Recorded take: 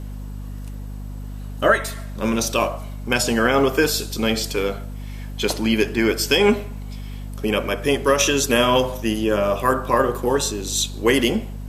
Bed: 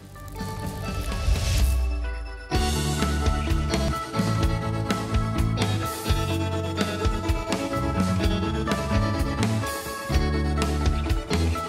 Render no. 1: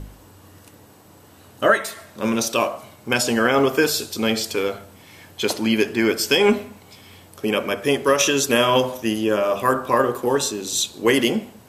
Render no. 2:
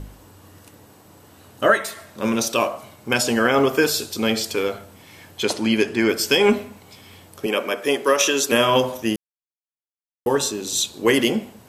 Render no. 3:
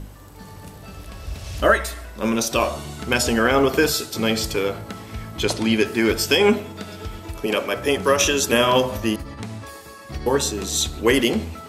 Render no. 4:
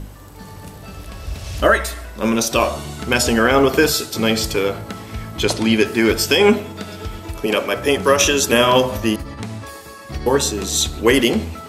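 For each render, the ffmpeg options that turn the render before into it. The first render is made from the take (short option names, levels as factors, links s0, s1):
-af "bandreject=f=50:t=h:w=4,bandreject=f=100:t=h:w=4,bandreject=f=150:t=h:w=4,bandreject=f=200:t=h:w=4,bandreject=f=250:t=h:w=4"
-filter_complex "[0:a]asettb=1/sr,asplit=3[s0][s1][s2];[s0]atrim=end=5.434[s3];[s1]atrim=start=5.43:end=6.09,asetpts=PTS-STARTPTS,afade=t=in:d=0.004:c=qsin,afade=t=out:st=0.656:d=0.004:c=qsin,lowpass=f=11000:w=0.5412,lowpass=f=11000:w=1.3066[s4];[s2]atrim=start=6.086[s5];[s3][s4]acrossfade=d=0.004:c1=hsin:c2=qsin[s6];[s6][s5]acrossfade=d=0.004:c1=qsin:c2=hsin,asettb=1/sr,asplit=3[s7][s8][s9];[s7]atrim=end=7.464[s10];[s8]atrim=start=7.46:end=8.52,asetpts=PTS-STARTPTS,afade=t=in:d=0.004:c=qsin,afade=t=out:st=1.056:d=0.004:c=qsin,highpass=280[s11];[s9]atrim=start=8.516[s12];[s10][s11]acrossfade=d=0.004:c1=hsin:c2=qsin[s13];[s13][s12]acrossfade=d=0.004:c1=qsin:c2=hsin,asplit=3[s14][s15][s16];[s14]atrim=end=9.16,asetpts=PTS-STARTPTS,afade=t=out:st=9.156:d=0.004:c=hsin[s17];[s15]atrim=start=9.16:end=10.26,asetpts=PTS-STARTPTS,volume=0[s18];[s16]atrim=start=10.26,asetpts=PTS-STARTPTS,afade=t=in:d=0.004:c=hsin[s19];[s17][s18][s19]concat=n=3:v=0:a=1"
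-filter_complex "[1:a]volume=0.355[s0];[0:a][s0]amix=inputs=2:normalize=0"
-af "volume=1.5,alimiter=limit=0.794:level=0:latency=1"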